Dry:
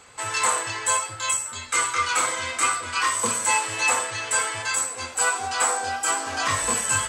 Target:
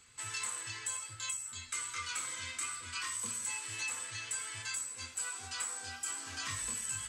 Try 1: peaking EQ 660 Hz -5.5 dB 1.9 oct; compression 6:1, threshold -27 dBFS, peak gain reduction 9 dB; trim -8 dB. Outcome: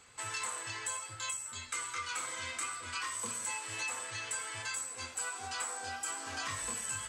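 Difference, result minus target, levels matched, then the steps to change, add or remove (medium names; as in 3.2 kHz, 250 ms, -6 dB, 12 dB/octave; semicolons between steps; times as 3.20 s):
500 Hz band +8.0 dB
change: peaking EQ 660 Hz -17.5 dB 1.9 oct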